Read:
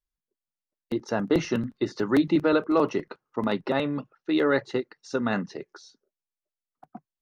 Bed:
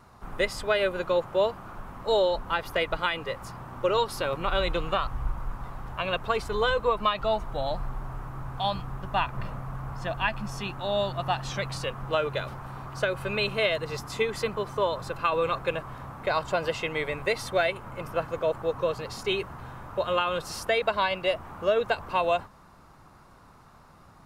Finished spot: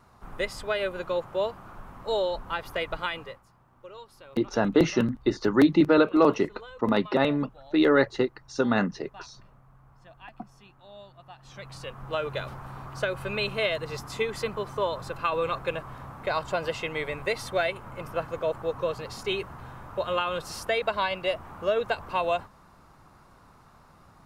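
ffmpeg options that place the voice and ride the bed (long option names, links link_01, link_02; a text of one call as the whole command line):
ffmpeg -i stem1.wav -i stem2.wav -filter_complex "[0:a]adelay=3450,volume=2.5dB[link_01];[1:a]volume=15.5dB,afade=type=out:start_time=3.16:duration=0.26:silence=0.141254,afade=type=in:start_time=11.38:duration=1.03:silence=0.112202[link_02];[link_01][link_02]amix=inputs=2:normalize=0" out.wav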